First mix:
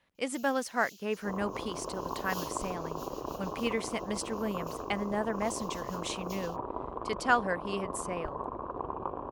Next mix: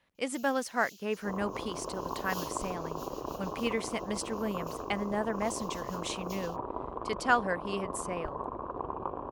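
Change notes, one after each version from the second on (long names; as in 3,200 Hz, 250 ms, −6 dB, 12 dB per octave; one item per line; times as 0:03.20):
nothing changed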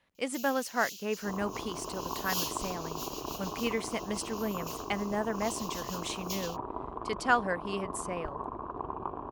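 first sound +10.0 dB
second sound: add parametric band 530 Hz −10 dB 0.25 octaves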